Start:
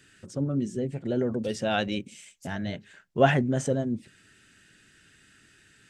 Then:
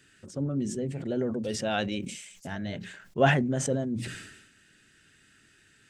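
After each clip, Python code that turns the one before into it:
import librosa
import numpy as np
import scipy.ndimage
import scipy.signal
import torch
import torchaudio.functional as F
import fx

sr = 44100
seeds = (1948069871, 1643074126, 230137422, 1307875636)

y = fx.hum_notches(x, sr, base_hz=60, count=3)
y = fx.sustainer(y, sr, db_per_s=56.0)
y = F.gain(torch.from_numpy(y), -2.5).numpy()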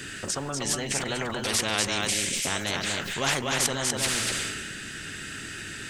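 y = x + 10.0 ** (-7.5 / 20.0) * np.pad(x, (int(243 * sr / 1000.0), 0))[:len(x)]
y = fx.spectral_comp(y, sr, ratio=4.0)
y = F.gain(torch.from_numpy(y), -1.5).numpy()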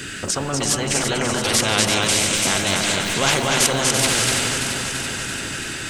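y = fx.notch(x, sr, hz=1800.0, q=17.0)
y = fx.echo_alternate(y, sr, ms=168, hz=1000.0, feedback_pct=83, wet_db=-5)
y = F.gain(torch.from_numpy(y), 7.0).numpy()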